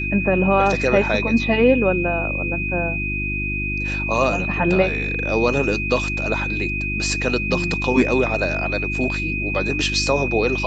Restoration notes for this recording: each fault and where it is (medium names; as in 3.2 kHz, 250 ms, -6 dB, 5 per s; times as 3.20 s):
hum 50 Hz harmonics 7 -27 dBFS
whine 2.5 kHz -24 dBFS